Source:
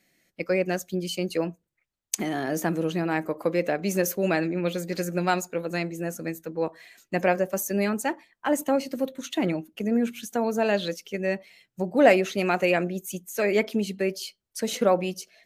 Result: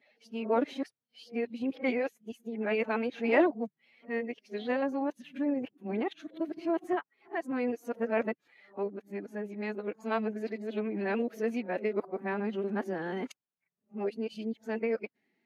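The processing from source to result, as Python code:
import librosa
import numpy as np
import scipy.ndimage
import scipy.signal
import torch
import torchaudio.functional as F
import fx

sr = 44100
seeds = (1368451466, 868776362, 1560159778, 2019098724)

y = x[::-1].copy()
y = fx.peak_eq(y, sr, hz=10000.0, db=9.0, octaves=0.64)
y = fx.pitch_keep_formants(y, sr, semitones=3.5)
y = scipy.signal.sosfilt(scipy.signal.butter(4, 120.0, 'highpass', fs=sr, output='sos'), y)
y = fx.air_absorb(y, sr, metres=330.0)
y = y * librosa.db_to_amplitude(-5.5)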